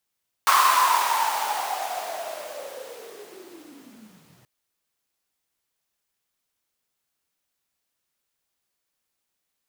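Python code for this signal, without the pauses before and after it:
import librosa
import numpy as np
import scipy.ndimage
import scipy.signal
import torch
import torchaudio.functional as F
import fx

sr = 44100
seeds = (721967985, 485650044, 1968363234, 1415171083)

y = fx.riser_noise(sr, seeds[0], length_s=3.98, colour='pink', kind='highpass', start_hz=1100.0, end_hz=110.0, q=11.0, swell_db=-38, law='linear')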